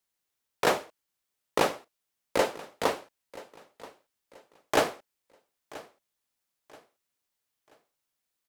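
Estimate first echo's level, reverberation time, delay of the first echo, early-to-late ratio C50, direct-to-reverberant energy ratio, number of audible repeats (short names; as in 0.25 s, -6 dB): -19.5 dB, none, 0.981 s, none, none, 2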